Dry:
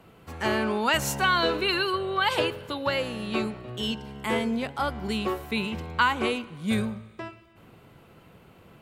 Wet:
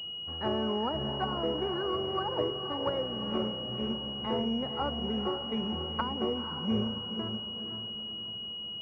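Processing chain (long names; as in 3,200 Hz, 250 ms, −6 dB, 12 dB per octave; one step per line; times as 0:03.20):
treble cut that deepens with the level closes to 640 Hz, closed at −19.5 dBFS
feedback delay with all-pass diffusion 497 ms, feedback 47%, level −7.5 dB
switching amplifier with a slow clock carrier 2,900 Hz
level −4 dB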